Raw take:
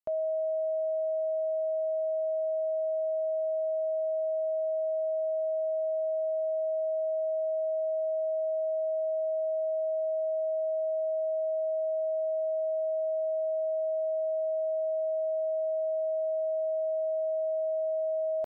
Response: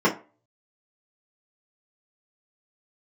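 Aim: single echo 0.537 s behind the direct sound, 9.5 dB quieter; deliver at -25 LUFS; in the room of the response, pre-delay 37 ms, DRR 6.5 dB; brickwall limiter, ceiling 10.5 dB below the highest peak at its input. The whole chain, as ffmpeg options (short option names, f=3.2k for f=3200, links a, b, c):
-filter_complex "[0:a]alimiter=level_in=13dB:limit=-24dB:level=0:latency=1,volume=-13dB,aecho=1:1:537:0.335,asplit=2[a][b];[1:a]atrim=start_sample=2205,adelay=37[c];[b][c]afir=irnorm=-1:irlink=0,volume=-24.5dB[d];[a][d]amix=inputs=2:normalize=0,volume=8dB"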